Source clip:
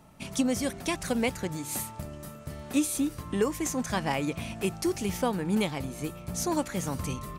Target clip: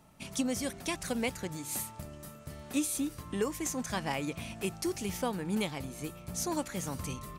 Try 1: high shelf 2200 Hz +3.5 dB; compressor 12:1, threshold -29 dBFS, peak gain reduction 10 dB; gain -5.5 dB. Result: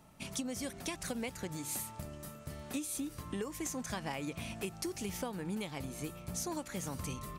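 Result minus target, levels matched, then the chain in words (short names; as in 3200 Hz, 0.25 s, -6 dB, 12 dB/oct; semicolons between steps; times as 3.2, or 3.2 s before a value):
compressor: peak gain reduction +10 dB
high shelf 2200 Hz +3.5 dB; gain -5.5 dB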